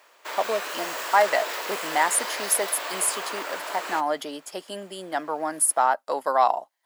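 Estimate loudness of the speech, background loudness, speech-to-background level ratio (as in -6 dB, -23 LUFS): -25.0 LUFS, -31.5 LUFS, 6.5 dB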